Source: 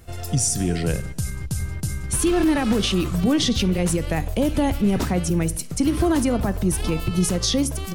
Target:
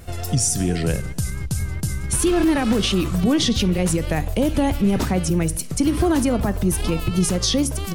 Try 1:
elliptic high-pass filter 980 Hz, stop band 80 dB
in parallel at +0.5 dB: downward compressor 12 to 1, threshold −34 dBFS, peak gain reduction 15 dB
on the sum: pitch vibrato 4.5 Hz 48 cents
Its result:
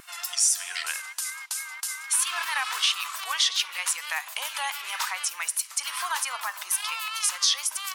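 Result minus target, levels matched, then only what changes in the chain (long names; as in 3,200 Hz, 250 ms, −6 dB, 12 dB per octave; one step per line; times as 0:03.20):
1,000 Hz band +3.0 dB
remove: elliptic high-pass filter 980 Hz, stop band 80 dB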